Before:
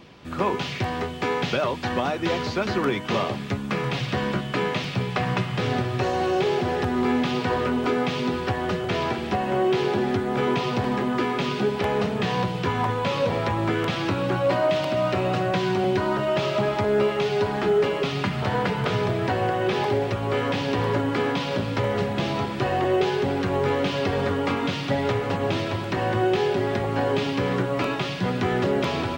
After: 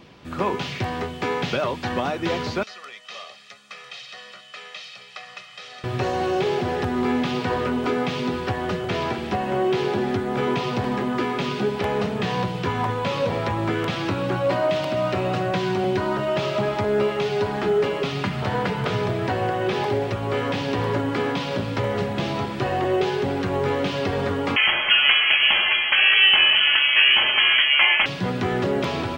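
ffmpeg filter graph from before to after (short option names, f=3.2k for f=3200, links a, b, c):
-filter_complex "[0:a]asettb=1/sr,asplit=3[a][b][c];[a]atrim=end=2.634[d];[b]atrim=start=2.63:end=5.84,asetpts=PTS-STARTPTS,afade=t=in:d=0.004:c=qsin,afade=t=out:st=3.206:d=0.004:c=qsin,highpass=170,lowpass=5.4k,aderivative,aecho=1:1:1.6:0.78,atrim=end_sample=141561[e];[c]atrim=start=5.836[f];[d][e]acrossfade=d=0.004:c1=hsin:c2=qsin[g];[g][f]acrossfade=d=0.004:c1=qsin:c2=hsin,asettb=1/sr,asplit=3[h][i][j];[h]atrim=end=24.564[k];[i]atrim=start=24.56:end=28.06,asetpts=PTS-STARTPTS,afade=t=in:d=0.004:c=qsin,afade=t=out:st=3.496:d=0.004:c=qsin,equalizer=f=1.2k:w=0.56:g=13.5,lowpass=f=2.9k:t=q:w=0.5098,lowpass=f=2.9k:t=q:w=0.6013,lowpass=f=2.9k:t=q:w=0.9,lowpass=f=2.9k:t=q:w=2.563,afreqshift=-3400[l];[j]atrim=start=28.056[m];[k][l]acrossfade=d=0.004:c1=hsin:c2=qsin[n];[n][m]acrossfade=d=0.004:c1=qsin:c2=hsin"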